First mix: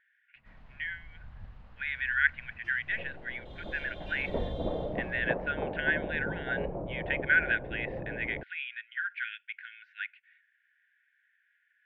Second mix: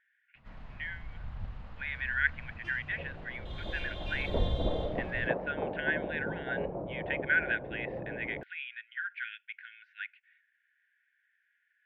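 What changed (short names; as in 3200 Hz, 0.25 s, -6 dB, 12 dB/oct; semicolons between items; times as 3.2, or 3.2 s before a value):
speech -3.0 dB; first sound +7.0 dB; second sound: add HPF 110 Hz 6 dB/oct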